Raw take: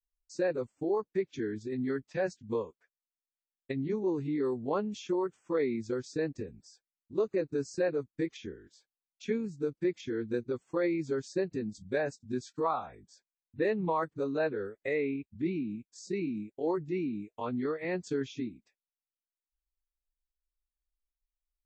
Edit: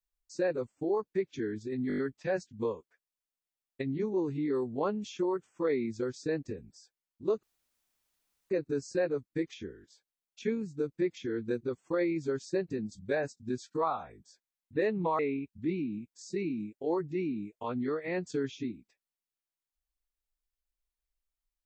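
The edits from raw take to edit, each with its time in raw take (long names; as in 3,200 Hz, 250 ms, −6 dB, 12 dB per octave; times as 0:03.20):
0:01.88: stutter 0.02 s, 6 plays
0:07.33: splice in room tone 1.07 s
0:14.02–0:14.96: remove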